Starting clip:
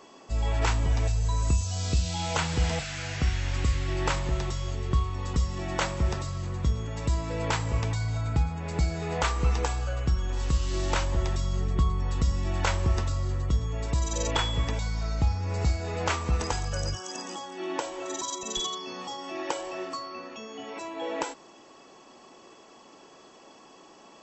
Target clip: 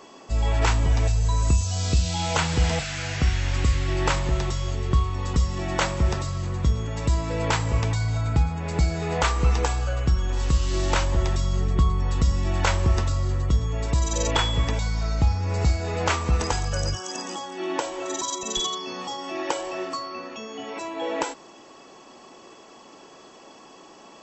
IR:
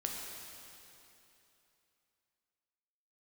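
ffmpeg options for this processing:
-af "acontrast=51,volume=-1.5dB"

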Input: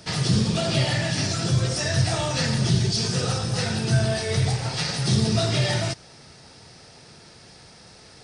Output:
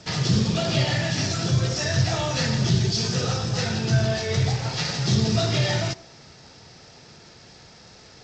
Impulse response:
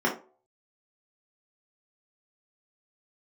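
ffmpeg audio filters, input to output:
-filter_complex "[0:a]asplit=2[a][b];[1:a]atrim=start_sample=2205,adelay=71[c];[b][c]afir=irnorm=-1:irlink=0,volume=-34dB[d];[a][d]amix=inputs=2:normalize=0" -ar 16000 -c:a g722

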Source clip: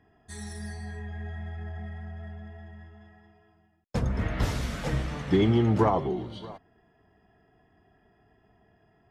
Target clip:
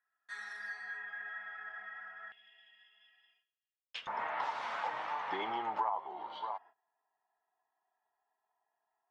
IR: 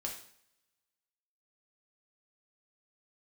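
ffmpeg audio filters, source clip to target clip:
-af "lowpass=3.1k,agate=range=-21dB:threshold=-58dB:ratio=16:detection=peak,asetnsamples=n=441:p=0,asendcmd='2.32 highpass f 3000;4.07 highpass f 900',highpass=f=1.4k:t=q:w=5.3,acompressor=threshold=-33dB:ratio=4,volume=-1dB"

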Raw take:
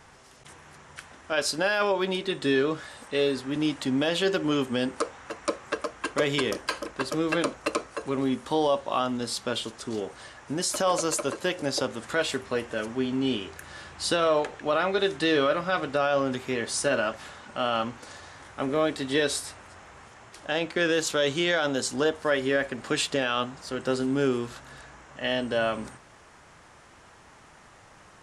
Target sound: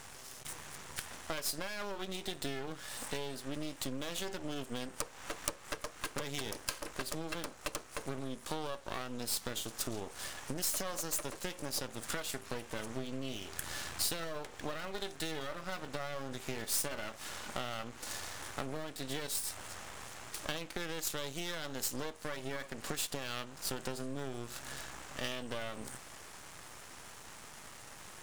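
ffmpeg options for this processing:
-af "acompressor=threshold=-37dB:ratio=12,aeval=exprs='max(val(0),0)':c=same,crystalizer=i=2:c=0,volume=3.5dB"

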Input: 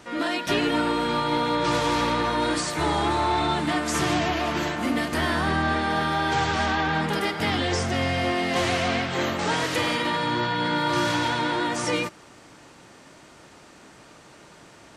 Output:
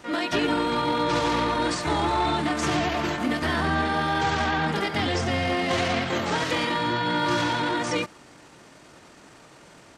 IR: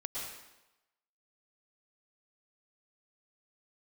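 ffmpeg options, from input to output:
-filter_complex "[0:a]acrossover=split=8200[a][b];[b]acompressor=threshold=-54dB:ratio=4:attack=1:release=60[c];[a][c]amix=inputs=2:normalize=0,atempo=1.5"

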